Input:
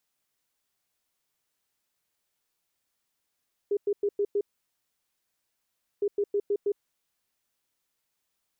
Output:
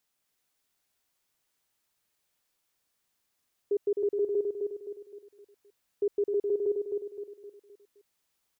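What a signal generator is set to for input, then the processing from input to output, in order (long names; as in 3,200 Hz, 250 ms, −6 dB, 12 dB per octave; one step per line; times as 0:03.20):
beeps in groups sine 407 Hz, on 0.06 s, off 0.10 s, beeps 5, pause 1.61 s, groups 2, −22.5 dBFS
repeating echo 259 ms, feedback 43%, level −4 dB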